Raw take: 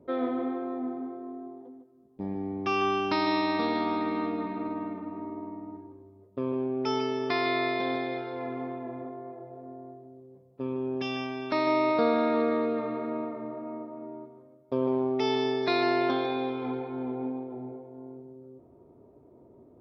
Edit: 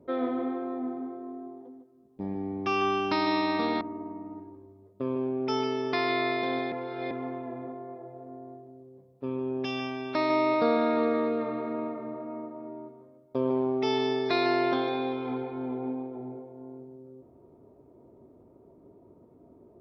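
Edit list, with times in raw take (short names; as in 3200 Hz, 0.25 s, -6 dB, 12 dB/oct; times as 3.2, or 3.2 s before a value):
3.81–5.18 cut
8.09–8.48 reverse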